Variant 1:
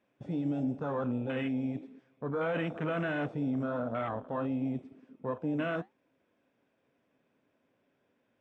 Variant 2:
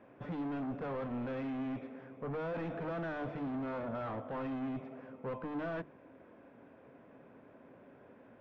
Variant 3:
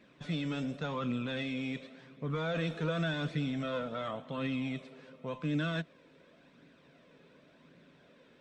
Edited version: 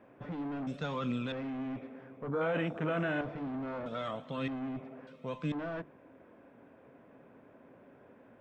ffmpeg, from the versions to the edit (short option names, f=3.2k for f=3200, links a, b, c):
-filter_complex "[2:a]asplit=3[a][b][c];[1:a]asplit=5[d][e][f][g][h];[d]atrim=end=0.672[i];[a]atrim=start=0.668:end=1.322[j];[e]atrim=start=1.318:end=2.282[k];[0:a]atrim=start=2.278:end=3.212[l];[f]atrim=start=3.208:end=3.862[m];[b]atrim=start=3.858:end=4.482[n];[g]atrim=start=4.478:end=5.072[o];[c]atrim=start=5.068:end=5.522[p];[h]atrim=start=5.518[q];[i][j]acrossfade=d=0.004:c1=hsin:c2=hsin[r];[r][k]acrossfade=d=0.004:c1=hsin:c2=hsin[s];[s][l]acrossfade=d=0.004:c1=hsin:c2=hsin[t];[t][m]acrossfade=d=0.004:c1=hsin:c2=hsin[u];[u][n]acrossfade=d=0.004:c1=hsin:c2=hsin[v];[v][o]acrossfade=d=0.004:c1=hsin:c2=hsin[w];[w][p]acrossfade=d=0.004:c1=hsin:c2=hsin[x];[x][q]acrossfade=d=0.004:c1=hsin:c2=hsin"